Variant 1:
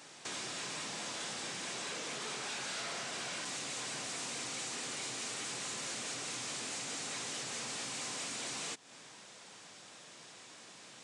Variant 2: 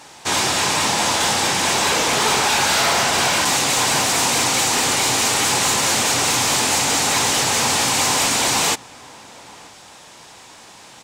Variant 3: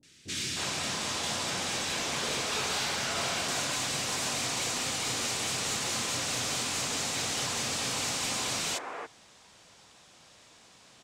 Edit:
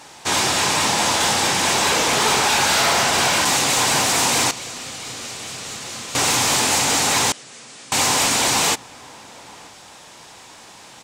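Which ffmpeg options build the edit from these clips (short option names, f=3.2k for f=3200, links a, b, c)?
-filter_complex "[1:a]asplit=3[a][b][c];[a]atrim=end=4.512[d];[2:a]atrim=start=4.508:end=6.152[e];[b]atrim=start=6.148:end=7.322[f];[0:a]atrim=start=7.318:end=7.922[g];[c]atrim=start=7.918[h];[d][e]acrossfade=d=0.004:c1=hsin:c2=hsin[i];[i][f]acrossfade=d=0.004:c1=hsin:c2=hsin[j];[j][g]acrossfade=d=0.004:c1=hsin:c2=hsin[k];[k][h]acrossfade=d=0.004:c1=hsin:c2=hsin"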